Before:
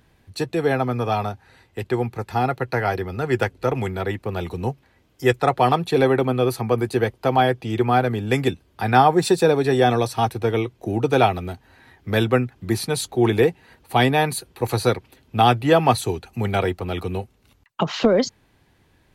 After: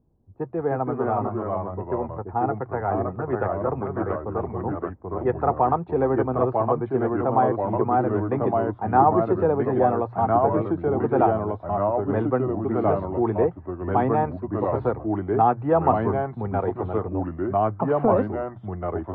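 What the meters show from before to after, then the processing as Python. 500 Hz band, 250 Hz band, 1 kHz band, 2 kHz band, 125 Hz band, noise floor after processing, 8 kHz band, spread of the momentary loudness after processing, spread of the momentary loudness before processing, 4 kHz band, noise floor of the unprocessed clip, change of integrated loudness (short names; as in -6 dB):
-1.5 dB, -1.5 dB, -1.0 dB, -11.5 dB, -4.0 dB, -42 dBFS, under -40 dB, 8 LU, 11 LU, under -30 dB, -60 dBFS, -2.5 dB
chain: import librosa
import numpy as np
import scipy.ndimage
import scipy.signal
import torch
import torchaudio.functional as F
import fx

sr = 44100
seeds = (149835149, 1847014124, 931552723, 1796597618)

y = fx.env_lowpass(x, sr, base_hz=390.0, full_db=-17.0)
y = fx.echo_pitch(y, sr, ms=263, semitones=-2, count=2, db_per_echo=-3.0)
y = fx.ladder_lowpass(y, sr, hz=1300.0, resonance_pct=35)
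y = fx.hum_notches(y, sr, base_hz=60, count=2)
y = F.gain(torch.from_numpy(y), 2.0).numpy()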